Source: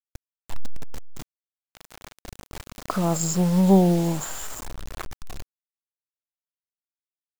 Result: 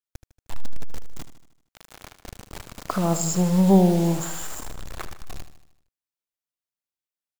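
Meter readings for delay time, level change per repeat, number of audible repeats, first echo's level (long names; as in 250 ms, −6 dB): 77 ms, −5.5 dB, 5, −12.0 dB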